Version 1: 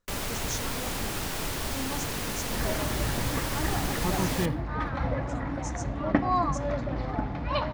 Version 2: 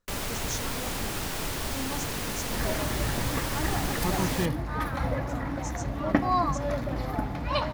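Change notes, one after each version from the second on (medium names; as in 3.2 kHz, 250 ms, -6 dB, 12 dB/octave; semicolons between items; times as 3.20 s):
second sound: remove distance through air 140 m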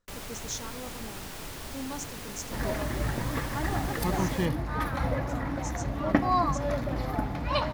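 first sound -8.0 dB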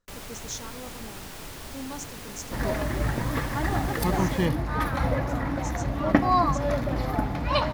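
second sound +3.5 dB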